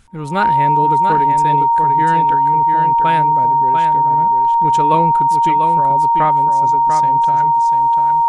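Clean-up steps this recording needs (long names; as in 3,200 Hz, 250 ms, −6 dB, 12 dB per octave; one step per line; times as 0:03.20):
notch filter 930 Hz, Q 30
echo removal 694 ms −6.5 dB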